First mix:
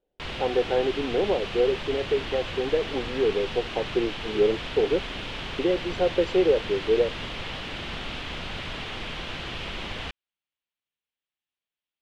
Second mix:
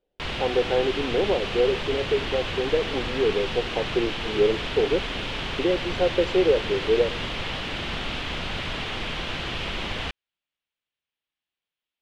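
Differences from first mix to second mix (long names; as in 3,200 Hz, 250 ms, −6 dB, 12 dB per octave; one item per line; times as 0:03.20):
background +4.0 dB
reverb: on, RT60 2.0 s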